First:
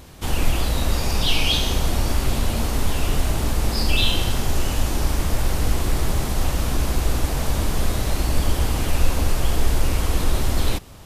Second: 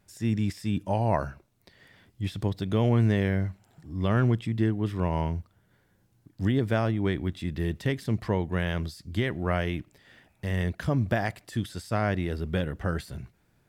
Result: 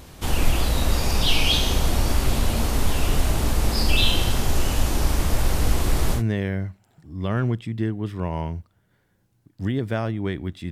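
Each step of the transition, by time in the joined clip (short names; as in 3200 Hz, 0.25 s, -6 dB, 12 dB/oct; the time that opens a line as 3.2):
first
6.18 switch to second from 2.98 s, crossfade 0.10 s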